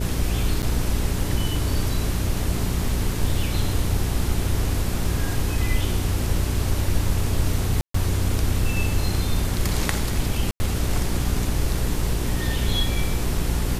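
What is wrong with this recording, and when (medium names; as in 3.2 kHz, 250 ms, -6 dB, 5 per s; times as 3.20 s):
hum 60 Hz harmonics 7 -27 dBFS
0.62–0.63 s: dropout 8.2 ms
7.81–7.94 s: dropout 134 ms
10.51–10.60 s: dropout 90 ms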